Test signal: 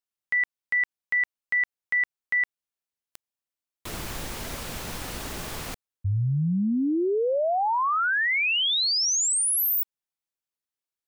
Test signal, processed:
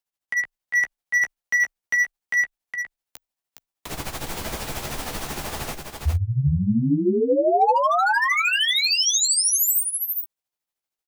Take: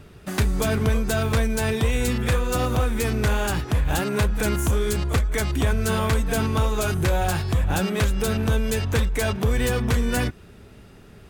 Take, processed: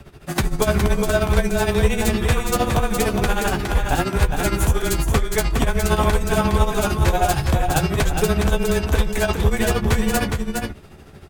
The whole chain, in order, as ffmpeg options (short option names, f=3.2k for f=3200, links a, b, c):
-filter_complex "[0:a]afreqshift=-21,tremolo=f=13:d=0.79,equalizer=f=760:t=o:w=0.56:g=4,acrossover=split=800|6400[a][b][c];[b]asoftclip=type=hard:threshold=-24.5dB[d];[a][d][c]amix=inputs=3:normalize=0,asplit=2[e][f];[f]adelay=14,volume=-9.5dB[g];[e][g]amix=inputs=2:normalize=0,asplit=2[h][i];[i]aecho=0:1:413:0.562[j];[h][j]amix=inputs=2:normalize=0,volume=5.5dB"